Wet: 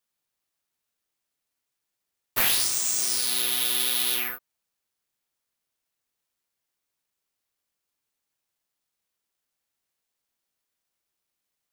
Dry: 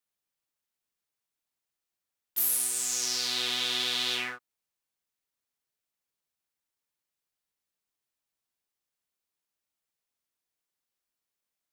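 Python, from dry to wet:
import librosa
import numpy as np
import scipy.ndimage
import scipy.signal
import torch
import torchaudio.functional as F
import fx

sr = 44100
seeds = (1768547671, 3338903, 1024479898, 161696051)

y = (np.kron(x[::3], np.eye(3)[0]) * 3)[:len(x)]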